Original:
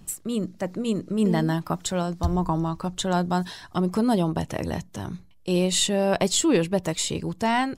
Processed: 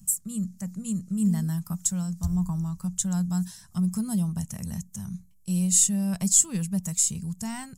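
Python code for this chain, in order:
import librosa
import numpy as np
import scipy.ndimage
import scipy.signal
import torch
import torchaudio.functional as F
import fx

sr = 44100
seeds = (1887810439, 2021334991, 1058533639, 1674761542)

y = fx.curve_eq(x, sr, hz=(130.0, 200.0, 300.0, 510.0, 1200.0, 3800.0, 6900.0), db=(0, 6, -20, -19, -11, -11, 11))
y = y * librosa.db_to_amplitude(-4.0)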